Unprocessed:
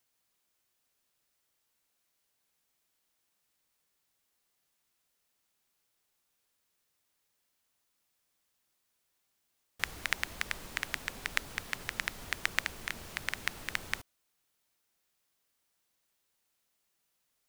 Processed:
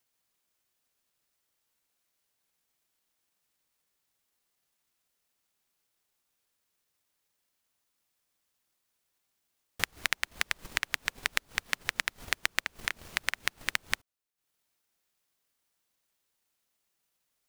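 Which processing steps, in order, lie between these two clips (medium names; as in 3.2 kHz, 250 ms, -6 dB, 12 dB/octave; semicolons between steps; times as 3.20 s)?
compression 6:1, threshold -34 dBFS, peak gain reduction 11.5 dB; transient shaper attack +11 dB, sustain -11 dB; trim -1 dB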